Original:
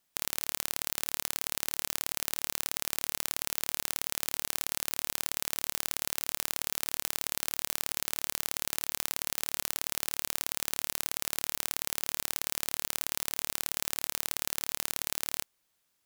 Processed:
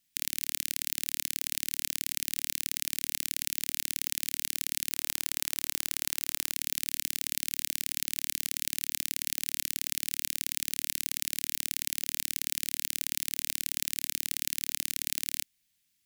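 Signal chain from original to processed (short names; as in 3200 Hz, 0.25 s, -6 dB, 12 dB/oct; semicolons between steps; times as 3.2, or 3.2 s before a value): band shelf 720 Hz -15 dB 2.3 oct, from 4.91 s -8.5 dB, from 6.51 s -15.5 dB; gain +1.5 dB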